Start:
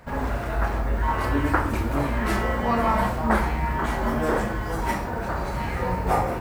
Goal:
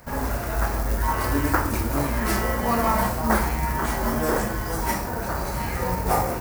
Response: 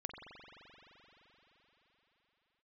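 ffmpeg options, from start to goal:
-af "acrusher=bits=6:mode=log:mix=0:aa=0.000001,aexciter=amount=1.3:drive=9.6:freq=4700"

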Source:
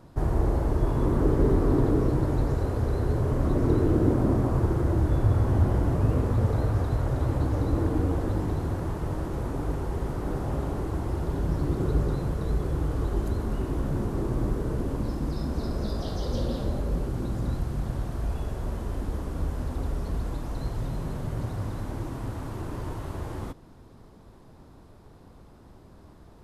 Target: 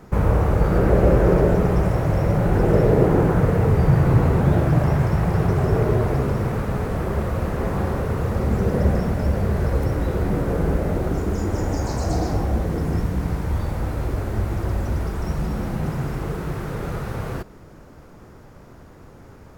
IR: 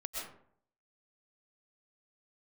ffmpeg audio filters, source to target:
-af "asetrate=59535,aresample=44100,volume=2"

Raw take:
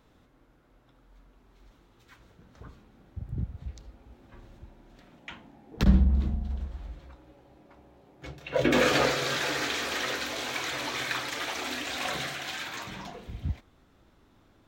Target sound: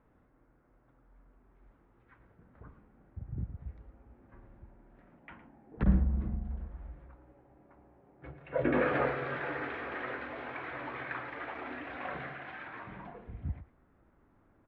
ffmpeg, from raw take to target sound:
-filter_complex "[0:a]lowpass=f=2000:w=0.5412,lowpass=f=2000:w=1.3066,asplit=2[s0][s1];[s1]aecho=0:1:112:0.2[s2];[s0][s2]amix=inputs=2:normalize=0,volume=0.562"

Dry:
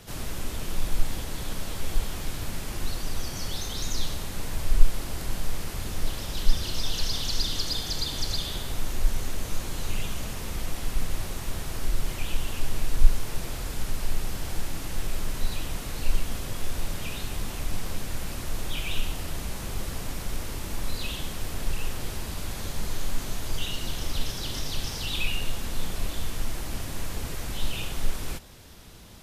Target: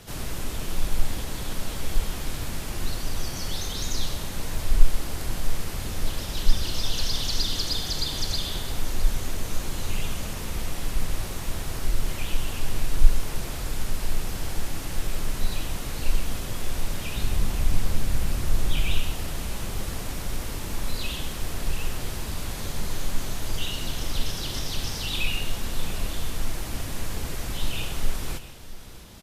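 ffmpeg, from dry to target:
-filter_complex "[0:a]asettb=1/sr,asplit=3[s0][s1][s2];[s0]atrim=end=17.164[s3];[s1]atrim=start=17.16:end=18.98,asetpts=PTS-STARTPTS,afade=t=in:d=0.004:c=qsin,afade=t=out:st=1.816:d=0.004:c=qsin,lowshelf=f=160:g=8[s4];[s2]atrim=start=18.976[s5];[s3][s4]acrossfade=d=0.004:c1=hsin:c2=qsin[s6];[s6][s5]acrossfade=d=0.004:c1=qsin:c2=hsin,aecho=1:1:130|659:0.178|0.141,volume=1.19" -ar 48000 -c:a libopus -b:a 96k

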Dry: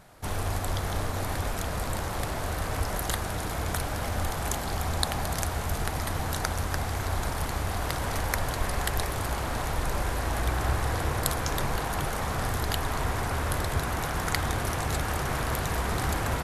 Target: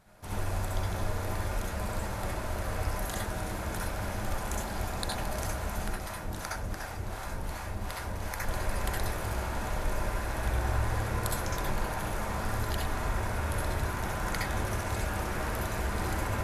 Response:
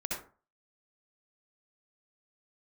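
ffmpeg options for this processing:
-filter_complex "[0:a]asettb=1/sr,asplit=3[s0][s1][s2];[s0]atrim=end=5.884[s3];[s1]atrim=start=5.88:end=8.42,asetpts=PTS-STARTPTS,afade=t=in:d=0.004:c=qsin,afade=t=out:st=2.536:d=0.004:c=qsin,acrossover=split=590[s4][s5];[s4]aeval=exprs='val(0)*(1-0.7/2+0.7/2*cos(2*PI*2.7*n/s))':c=same[s6];[s5]aeval=exprs='val(0)*(1-0.7/2-0.7/2*cos(2*PI*2.7*n/s))':c=same[s7];[s6][s7]amix=inputs=2:normalize=0[s8];[s2]atrim=start=8.416[s9];[s3][s8]acrossfade=d=0.004:c1=hsin:c2=qsin[s10];[s10][s9]acrossfade=d=0.004:c1=qsin:c2=hsin[s11];[1:a]atrim=start_sample=2205,afade=t=out:st=0.16:d=0.01,atrim=end_sample=7497[s12];[s11][s12]afir=irnorm=-1:irlink=0,volume=0.447"

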